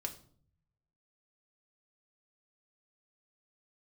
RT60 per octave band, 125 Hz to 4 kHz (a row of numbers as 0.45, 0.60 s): 1.3, 0.85, 0.60, 0.50, 0.35, 0.40 s